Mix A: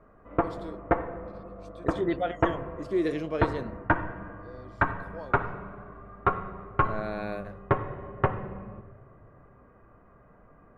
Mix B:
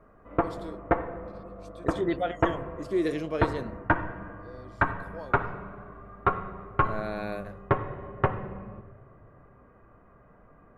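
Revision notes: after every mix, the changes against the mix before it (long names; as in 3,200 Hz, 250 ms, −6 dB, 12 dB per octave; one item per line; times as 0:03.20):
master: add high-shelf EQ 7,500 Hz +10 dB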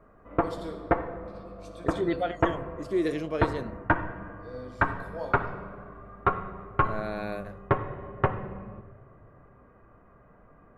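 first voice: send on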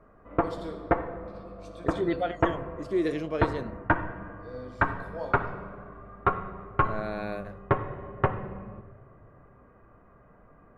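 master: add high-shelf EQ 9,900 Hz −10 dB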